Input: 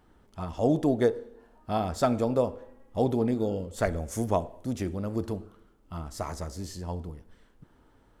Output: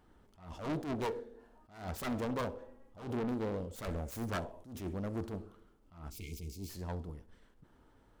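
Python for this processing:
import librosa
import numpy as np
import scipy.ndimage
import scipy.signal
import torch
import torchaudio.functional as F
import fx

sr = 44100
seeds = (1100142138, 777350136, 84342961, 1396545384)

y = fx.self_delay(x, sr, depth_ms=0.71)
y = fx.spec_erase(y, sr, start_s=6.1, length_s=0.59, low_hz=470.0, high_hz=2100.0)
y = 10.0 ** (-27.0 / 20.0) * np.tanh(y / 10.0 ** (-27.0 / 20.0))
y = fx.echo_feedback(y, sr, ms=65, feedback_pct=30, wet_db=-23)
y = fx.attack_slew(y, sr, db_per_s=120.0)
y = F.gain(torch.from_numpy(y), -3.5).numpy()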